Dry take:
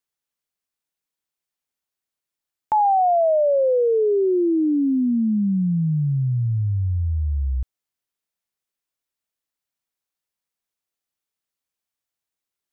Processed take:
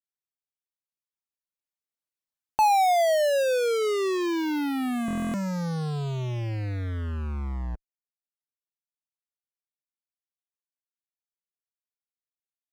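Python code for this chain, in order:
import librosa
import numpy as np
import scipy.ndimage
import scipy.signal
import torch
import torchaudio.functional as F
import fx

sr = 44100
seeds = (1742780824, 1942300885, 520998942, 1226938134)

p1 = fx.doppler_pass(x, sr, speed_mps=21, closest_m=16.0, pass_at_s=2.65)
p2 = fx.fuzz(p1, sr, gain_db=53.0, gate_db=-52.0)
p3 = p1 + (p2 * librosa.db_to_amplitude(-8.5))
p4 = fx.dereverb_blind(p3, sr, rt60_s=0.93)
p5 = fx.buffer_glitch(p4, sr, at_s=(5.06,), block=1024, repeats=11)
y = p5 * librosa.db_to_amplitude(-5.0)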